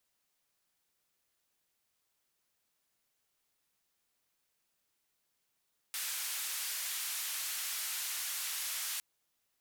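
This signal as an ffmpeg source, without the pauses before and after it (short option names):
-f lavfi -i "anoisesrc=c=white:d=3.06:r=44100:seed=1,highpass=f=1400,lowpass=f=15000,volume=-31dB"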